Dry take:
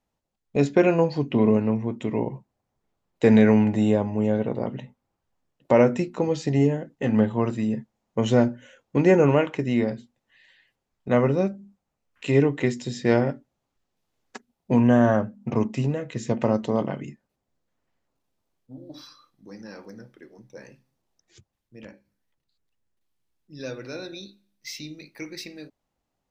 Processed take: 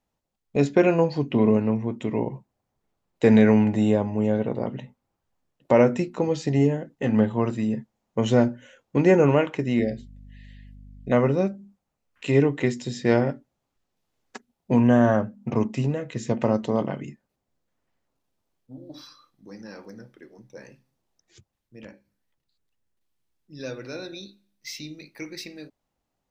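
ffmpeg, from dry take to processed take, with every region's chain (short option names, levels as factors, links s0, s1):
-filter_complex "[0:a]asettb=1/sr,asplit=3[s0][s1][s2];[s0]atrim=end=9.794[s3];[s1]atrim=start=9.79:end=11.12,asetpts=PTS-STARTPTS,afade=t=in:d=0.004:c=qsin,afade=t=out:st=1.326:d=0.004:c=qsin,asuperstop=centerf=1100:order=12:qfactor=1.2,aeval=exprs='val(0)+0.00631*(sin(2*PI*50*n/s)+sin(2*PI*2*50*n/s)/2+sin(2*PI*3*50*n/s)/3+sin(2*PI*4*50*n/s)/4+sin(2*PI*5*50*n/s)/5)':c=same[s4];[s2]atrim=start=11.116[s5];[s3][s4]acrossfade=d=0.004:c1=hsin:c2=qsin[s6];[s6][s5]acrossfade=d=0.004:c1=qsin:c2=hsin"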